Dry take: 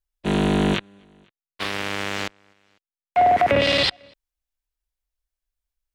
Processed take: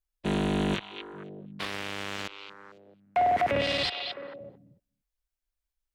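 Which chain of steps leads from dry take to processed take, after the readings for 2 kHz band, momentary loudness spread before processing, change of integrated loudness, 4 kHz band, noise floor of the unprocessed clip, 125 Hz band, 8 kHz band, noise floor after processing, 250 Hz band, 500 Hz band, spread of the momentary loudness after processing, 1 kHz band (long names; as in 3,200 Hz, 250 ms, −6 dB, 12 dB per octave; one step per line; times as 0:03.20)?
−7.5 dB, 12 LU, −8.0 dB, −7.5 dB, below −85 dBFS, −7.0 dB, −8.0 dB, below −85 dBFS, −7.0 dB, −7.5 dB, 18 LU, −7.5 dB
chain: echo through a band-pass that steps 220 ms, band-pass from 3,000 Hz, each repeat −1.4 octaves, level −10 dB
brickwall limiter −15.5 dBFS, peak gain reduction 7.5 dB
level −3 dB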